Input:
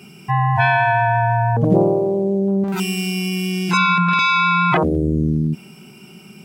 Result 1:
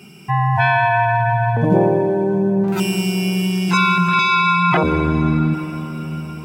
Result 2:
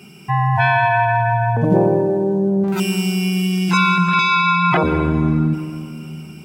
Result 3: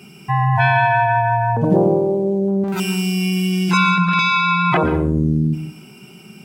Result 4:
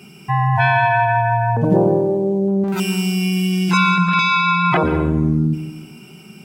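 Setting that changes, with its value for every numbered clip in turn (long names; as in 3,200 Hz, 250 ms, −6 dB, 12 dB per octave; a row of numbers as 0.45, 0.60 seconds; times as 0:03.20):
dense smooth reverb, RT60: 5.3, 2.5, 0.54, 1.1 seconds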